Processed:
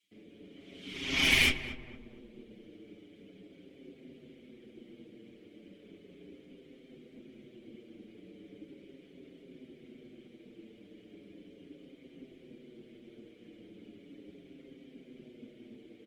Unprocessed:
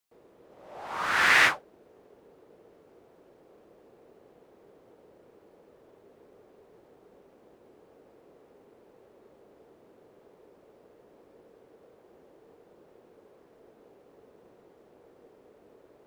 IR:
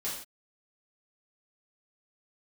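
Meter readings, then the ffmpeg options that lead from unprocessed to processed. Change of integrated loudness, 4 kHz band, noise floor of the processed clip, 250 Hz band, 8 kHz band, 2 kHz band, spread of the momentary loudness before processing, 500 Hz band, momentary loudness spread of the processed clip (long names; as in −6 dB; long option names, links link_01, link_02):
−5.0 dB, +2.5 dB, −58 dBFS, +7.5 dB, −1.0 dB, −6.5 dB, 20 LU, −3.5 dB, 21 LU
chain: -filter_complex "[0:a]highpass=210,acrossover=split=3500[link_01][link_02];[link_02]acompressor=threshold=-52dB:ratio=4:attack=1:release=60[link_03];[link_01][link_03]amix=inputs=2:normalize=0,lowshelf=frequency=370:gain=3.5,acrossover=split=310|2800[link_04][link_05][link_06];[link_05]acompressor=threshold=-54dB:ratio=6[link_07];[link_04][link_07][link_06]amix=inputs=3:normalize=0,apsyclip=25.5dB,aexciter=amount=2.3:drive=4.7:freq=2600,asplit=3[link_08][link_09][link_10];[link_08]bandpass=frequency=270:width_type=q:width=8,volume=0dB[link_11];[link_09]bandpass=frequency=2290:width_type=q:width=8,volume=-6dB[link_12];[link_10]bandpass=frequency=3010:width_type=q:width=8,volume=-9dB[link_13];[link_11][link_12][link_13]amix=inputs=3:normalize=0,aeval=exprs='0.631*(cos(1*acos(clip(val(0)/0.631,-1,1)))-cos(1*PI/2))+0.00501*(cos(4*acos(clip(val(0)/0.631,-1,1)))-cos(4*PI/2))+0.0708*(cos(8*acos(clip(val(0)/0.631,-1,1)))-cos(8*PI/2))':channel_layout=same,afftfilt=real='hypot(re,im)*cos(2*PI*random(0))':imag='hypot(re,im)*sin(2*PI*random(1))':win_size=512:overlap=0.75,asplit=2[link_14][link_15];[link_15]adelay=27,volume=-14dB[link_16];[link_14][link_16]amix=inputs=2:normalize=0,asplit=2[link_17][link_18];[link_18]adelay=231,lowpass=frequency=1200:poles=1,volume=-10.5dB,asplit=2[link_19][link_20];[link_20]adelay=231,lowpass=frequency=1200:poles=1,volume=0.49,asplit=2[link_21][link_22];[link_22]adelay=231,lowpass=frequency=1200:poles=1,volume=0.49,asplit=2[link_23][link_24];[link_24]adelay=231,lowpass=frequency=1200:poles=1,volume=0.49,asplit=2[link_25][link_26];[link_26]adelay=231,lowpass=frequency=1200:poles=1,volume=0.49[link_27];[link_17][link_19][link_21][link_23][link_25][link_27]amix=inputs=6:normalize=0,asplit=2[link_28][link_29];[link_29]adelay=6.5,afreqshift=-0.37[link_30];[link_28][link_30]amix=inputs=2:normalize=1"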